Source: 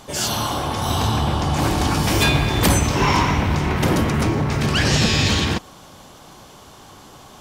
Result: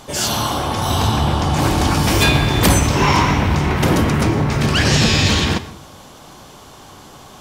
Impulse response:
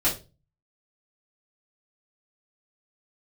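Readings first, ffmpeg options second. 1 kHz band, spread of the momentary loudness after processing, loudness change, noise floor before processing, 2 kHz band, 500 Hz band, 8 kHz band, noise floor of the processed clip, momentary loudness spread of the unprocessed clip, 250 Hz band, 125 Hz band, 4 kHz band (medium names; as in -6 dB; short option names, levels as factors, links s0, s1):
+3.0 dB, 6 LU, +3.0 dB, -44 dBFS, +3.0 dB, +3.0 dB, +3.0 dB, -41 dBFS, 6 LU, +3.0 dB, +3.0 dB, +3.0 dB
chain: -filter_complex "[0:a]flanger=delay=6.3:depth=9.8:regen=-86:speed=1.2:shape=triangular,asplit=2[s0][s1];[1:a]atrim=start_sample=2205,asetrate=37044,aresample=44100,adelay=109[s2];[s1][s2]afir=irnorm=-1:irlink=0,volume=0.0316[s3];[s0][s3]amix=inputs=2:normalize=0,volume=2.37"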